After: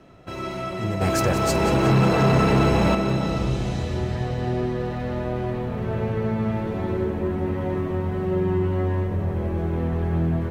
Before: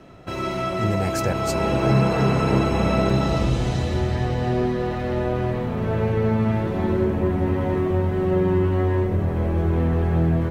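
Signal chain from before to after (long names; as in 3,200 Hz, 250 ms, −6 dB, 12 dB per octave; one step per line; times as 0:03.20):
0:01.01–0:02.95: leveller curve on the samples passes 2
on a send: echo with a time of its own for lows and highs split 530 Hz, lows 422 ms, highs 182 ms, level −11 dB
on the sum: level −4 dB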